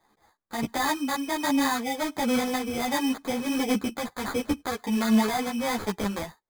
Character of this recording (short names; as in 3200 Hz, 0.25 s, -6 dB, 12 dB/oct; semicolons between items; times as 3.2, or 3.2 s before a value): tremolo triangle 1.4 Hz, depth 40%; aliases and images of a low sample rate 2800 Hz, jitter 0%; a shimmering, thickened sound